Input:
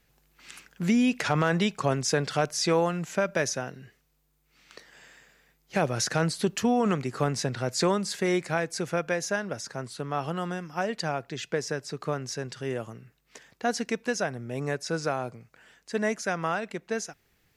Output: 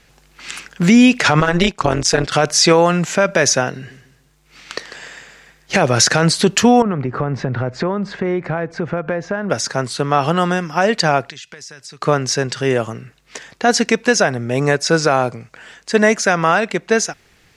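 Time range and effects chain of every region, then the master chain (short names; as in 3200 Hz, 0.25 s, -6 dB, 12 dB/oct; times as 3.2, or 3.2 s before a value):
1.4–2.32 gate -34 dBFS, range -9 dB + AM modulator 180 Hz, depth 75%
3.75–5.8 transient shaper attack +6 dB, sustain +1 dB + feedback echo 0.146 s, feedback 34%, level -12 dB
6.82–9.5 LPF 1500 Hz + compressor 3:1, threshold -35 dBFS + low shelf 160 Hz +7 dB
11.3–12.02 passive tone stack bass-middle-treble 5-5-5 + compressor 12:1, threshold -47 dBFS
whole clip: LPF 9000 Hz 12 dB/oct; low shelf 450 Hz -3.5 dB; maximiser +18 dB; gain -1 dB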